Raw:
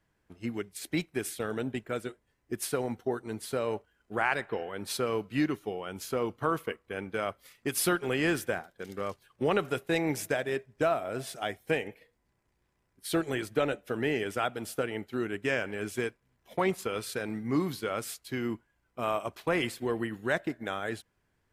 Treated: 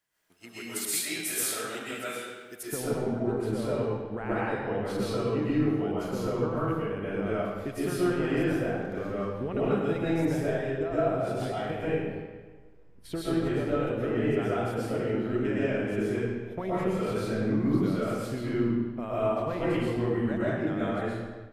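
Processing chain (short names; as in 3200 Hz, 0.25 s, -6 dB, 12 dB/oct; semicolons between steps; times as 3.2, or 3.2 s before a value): compressor 2.5:1, threshold -36 dBFS, peak gain reduction 9.5 dB; tilt +3.5 dB/oct, from 2.61 s -3 dB/oct; digital reverb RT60 1.4 s, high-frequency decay 0.8×, pre-delay 85 ms, DRR -9 dB; AGC gain up to 6 dB; gain -9 dB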